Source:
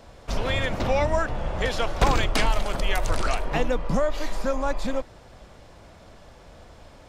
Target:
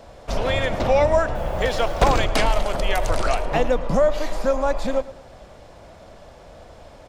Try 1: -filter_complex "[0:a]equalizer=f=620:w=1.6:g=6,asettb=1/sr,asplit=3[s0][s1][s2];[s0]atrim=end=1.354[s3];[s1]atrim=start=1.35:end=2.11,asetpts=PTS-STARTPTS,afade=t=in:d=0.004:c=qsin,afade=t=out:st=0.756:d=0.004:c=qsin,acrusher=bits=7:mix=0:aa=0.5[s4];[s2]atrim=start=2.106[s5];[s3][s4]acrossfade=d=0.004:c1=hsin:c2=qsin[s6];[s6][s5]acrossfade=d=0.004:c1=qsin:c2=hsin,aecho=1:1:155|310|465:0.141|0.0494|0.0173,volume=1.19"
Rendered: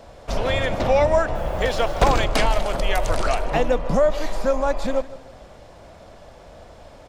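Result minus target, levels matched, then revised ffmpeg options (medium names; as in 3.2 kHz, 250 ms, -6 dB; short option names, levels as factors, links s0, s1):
echo 45 ms late
-filter_complex "[0:a]equalizer=f=620:w=1.6:g=6,asettb=1/sr,asplit=3[s0][s1][s2];[s0]atrim=end=1.354[s3];[s1]atrim=start=1.35:end=2.11,asetpts=PTS-STARTPTS,afade=t=in:d=0.004:c=qsin,afade=t=out:st=0.756:d=0.004:c=qsin,acrusher=bits=7:mix=0:aa=0.5[s4];[s2]atrim=start=2.106[s5];[s3][s4]acrossfade=d=0.004:c1=hsin:c2=qsin[s6];[s6][s5]acrossfade=d=0.004:c1=qsin:c2=hsin,aecho=1:1:110|220|330:0.141|0.0494|0.0173,volume=1.19"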